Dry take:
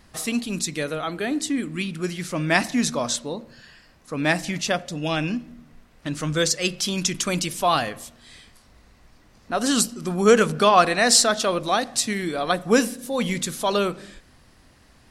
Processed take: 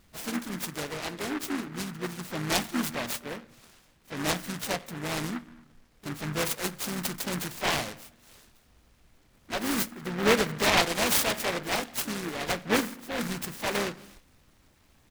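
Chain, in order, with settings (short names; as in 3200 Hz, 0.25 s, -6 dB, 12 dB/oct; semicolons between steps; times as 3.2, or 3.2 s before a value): harmoniser -4 st -15 dB, +5 st -10 dB; noise-modulated delay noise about 1300 Hz, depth 0.23 ms; gain -8 dB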